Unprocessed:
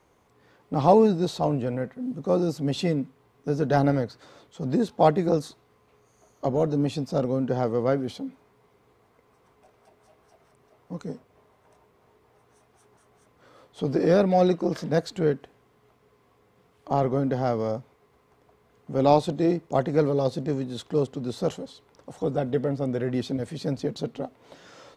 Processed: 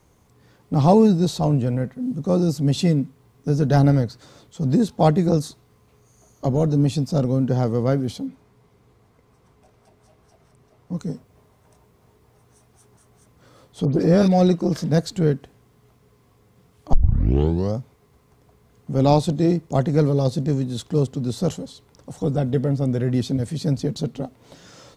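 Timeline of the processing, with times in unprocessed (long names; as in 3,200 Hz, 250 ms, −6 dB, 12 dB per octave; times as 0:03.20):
0:08.26–0:10.95: high-shelf EQ 7,900 Hz −7.5 dB
0:13.85–0:14.28: all-pass dispersion highs, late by 92 ms, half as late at 2,300 Hz
0:16.93: tape start 0.81 s
whole clip: bass and treble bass +11 dB, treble +9 dB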